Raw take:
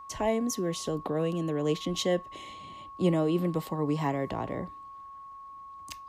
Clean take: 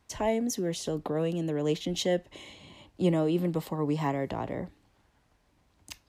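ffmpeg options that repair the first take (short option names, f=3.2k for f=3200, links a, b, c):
-af "bandreject=f=1.1k:w=30"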